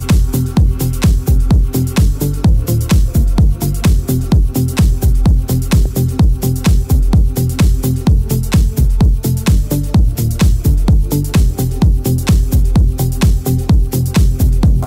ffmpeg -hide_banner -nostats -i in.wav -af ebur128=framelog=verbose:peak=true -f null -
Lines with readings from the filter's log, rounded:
Integrated loudness:
  I:         -13.7 LUFS
  Threshold: -23.7 LUFS
Loudness range:
  LRA:         0.4 LU
  Threshold: -33.7 LUFS
  LRA low:   -13.8 LUFS
  LRA high:  -13.4 LUFS
True peak:
  Peak:       -3.2 dBFS